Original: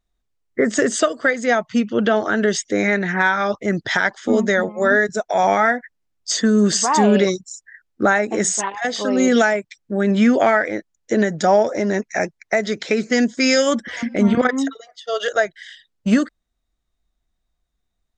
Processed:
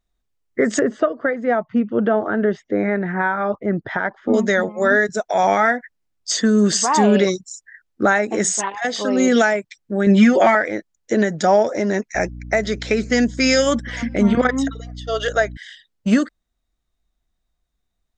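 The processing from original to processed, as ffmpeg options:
-filter_complex "[0:a]asettb=1/sr,asplit=3[s0][s1][s2];[s0]atrim=end=0.794[s3];[s1]atrim=start=0.79:end=4.34,asetpts=PTS-STARTPTS,afade=t=in:d=0.004:c=qsin,afade=t=out:st=3.546:d=0.004:c=qsin,lowpass=1300[s4];[s2]atrim=start=4.336[s5];[s3][s4]acrossfade=d=0.004:c1=hsin:c2=qsin[s6];[s6][s5]acrossfade=d=0.004:c1=qsin:c2=hsin,asettb=1/sr,asplit=3[s7][s8][s9];[s7]atrim=end=10.064[s10];[s8]atrim=start=10.06:end=10.55,asetpts=PTS-STARTPTS,afade=t=in:d=0.004:c=qsin,afade=t=out:st=0.486:d=0.004:c=qsin,aecho=1:1:5.5:0.86,atrim=end_sample=21609[s11];[s9]atrim=start=10.546[s12];[s10][s11]acrossfade=d=0.004:c1=hsin:c2=qsin[s13];[s13][s12]acrossfade=d=0.004:c1=qsin:c2=hsin,asettb=1/sr,asplit=3[s14][s15][s16];[s14]atrim=end=12.154[s17];[s15]atrim=start=12.15:end=15.57,asetpts=PTS-STARTPTS,afade=t=in:d=0.004:c=qsin,afade=t=out:st=3.416:d=0.004:c=qsin,aeval=exprs='val(0)+0.0251*(sin(2*PI*60*n/s)+sin(2*PI*2*60*n/s)/2+sin(2*PI*3*60*n/s)/3+sin(2*PI*4*60*n/s)/4+sin(2*PI*5*60*n/s)/5)':c=same[s18];[s16]atrim=start=15.566[s19];[s17][s18]acrossfade=d=0.004:c1=hsin:c2=qsin[s20];[s20][s19]acrossfade=d=0.004:c1=qsin:c2=hsin"

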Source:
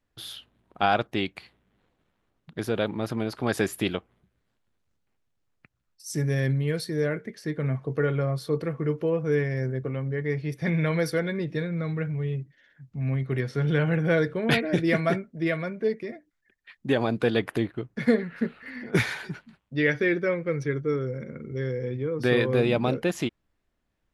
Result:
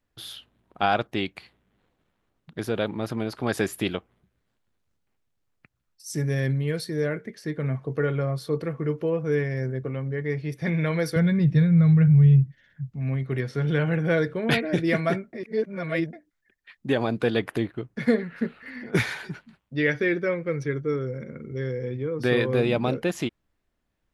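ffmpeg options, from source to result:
-filter_complex "[0:a]asettb=1/sr,asplit=3[s0][s1][s2];[s0]atrim=end=11.164[s3];[s1]atrim=start=11.16:end=12.91,asetpts=PTS-STARTPTS,afade=t=in:d=0.004:c=qsin,afade=t=out:st=1.746:d=0.004:c=qsin,lowshelf=f=220:t=q:w=1.5:g=12[s4];[s2]atrim=start=12.906[s5];[s3][s4]acrossfade=d=0.004:c1=hsin:c2=qsin[s6];[s6][s5]acrossfade=d=0.004:c1=qsin:c2=hsin,asplit=3[s7][s8][s9];[s7]atrim=end=15.332[s10];[s8]atrim=start=15.328:end=16.132,asetpts=PTS-STARTPTS,areverse[s11];[s9]atrim=start=16.128[s12];[s10][s11]acrossfade=d=0.004:c1=hsin:c2=hsin[s13];[s13][s12]acrossfade=d=0.004:c1=hsin:c2=hsin"

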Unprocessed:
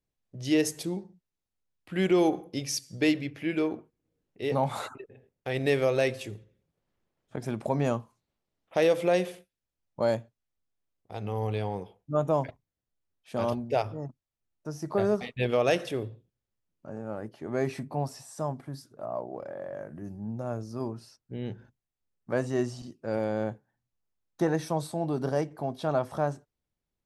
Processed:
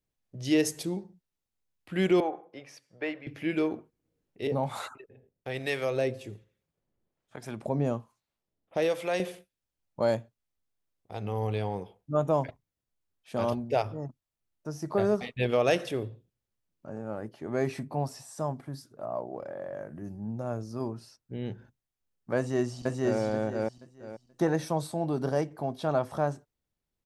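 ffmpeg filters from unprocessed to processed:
-filter_complex "[0:a]asettb=1/sr,asplit=3[s0][s1][s2];[s0]atrim=end=2.204[s3];[s1]atrim=start=2.2:end=3.27,asetpts=PTS-STARTPTS,afade=t=in:d=0.004:c=qsin,afade=t=out:st=1.066:d=0.004:c=qsin,acrossover=split=490 2200:gain=0.112 1 0.0631[s4][s5][s6];[s4][s5][s6]amix=inputs=3:normalize=0[s7];[s2]atrim=start=3.266[s8];[s3][s7]acrossfade=d=0.004:c1=hsin:c2=qsin[s9];[s9][s8]acrossfade=d=0.004:c1=qsin:c2=hsin,asettb=1/sr,asplit=3[s10][s11][s12];[s10]atrim=end=4.474[s13];[s11]atrim=start=4.47:end=9.2,asetpts=PTS-STARTPTS,afade=t=in:d=0.004:c=qsin,afade=t=out:st=4.726:d=0.004:c=qsin,acrossover=split=710[s14][s15];[s14]aeval=exprs='val(0)*(1-0.7/2+0.7/2*cos(2*PI*1.2*n/s))':c=same[s16];[s15]aeval=exprs='val(0)*(1-0.7/2-0.7/2*cos(2*PI*1.2*n/s))':c=same[s17];[s16][s17]amix=inputs=2:normalize=0[s18];[s12]atrim=start=9.196[s19];[s13][s18]acrossfade=d=0.004:c1=hsin:c2=qsin[s20];[s20][s19]acrossfade=d=0.004:c1=qsin:c2=hsin,asplit=2[s21][s22];[s22]afade=t=in:st=22.37:d=0.01,afade=t=out:st=23.2:d=0.01,aecho=0:1:480|960|1440|1920:0.944061|0.236015|0.0590038|0.014751[s23];[s21][s23]amix=inputs=2:normalize=0"

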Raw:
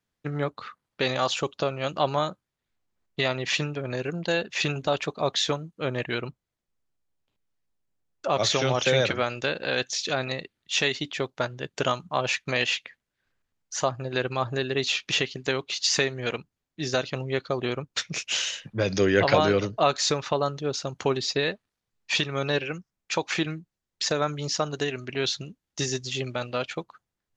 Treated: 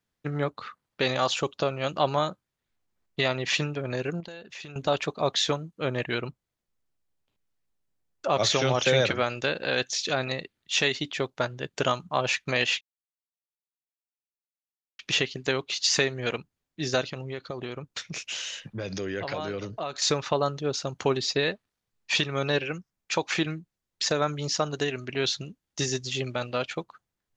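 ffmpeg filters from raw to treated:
-filter_complex "[0:a]asettb=1/sr,asplit=3[s0][s1][s2];[s0]atrim=end=4.204[s3];[s1]atrim=start=4.2:end=4.76,asetpts=PTS-STARTPTS,afade=t=in:d=0.004:c=qsin,afade=t=out:st=0.556:d=0.004:c=qsin,acompressor=threshold=0.01:ratio=5:attack=3.2:release=140:knee=1:detection=peak[s4];[s2]atrim=start=4.756[s5];[s3][s4]acrossfade=d=0.004:c1=hsin:c2=qsin[s6];[s6][s5]acrossfade=d=0.004:c1=qsin:c2=hsin,asettb=1/sr,asplit=3[s7][s8][s9];[s7]atrim=end=17.044[s10];[s8]atrim=start=17.04:end=20.02,asetpts=PTS-STARTPTS,afade=t=in:d=0.004:c=qsin,afade=t=out:st=2.976:d=0.004:c=qsin,acompressor=threshold=0.0251:ratio=3:attack=3.2:release=140:knee=1:detection=peak[s11];[s9]atrim=start=20.016[s12];[s10][s11]acrossfade=d=0.004:c1=hsin:c2=qsin[s13];[s13][s12]acrossfade=d=0.004:c1=qsin:c2=hsin,asplit=3[s14][s15][s16];[s14]atrim=end=12.81,asetpts=PTS-STARTPTS,afade=t=out:st=12.806:d=0.004:c=hsin[s17];[s15]atrim=start=12.81:end=14.99,asetpts=PTS-STARTPTS,volume=0[s18];[s16]atrim=start=14.99,asetpts=PTS-STARTPTS,afade=t=in:d=0.004:c=hsin[s19];[s17][s18][s19]concat=n=3:v=0:a=1"

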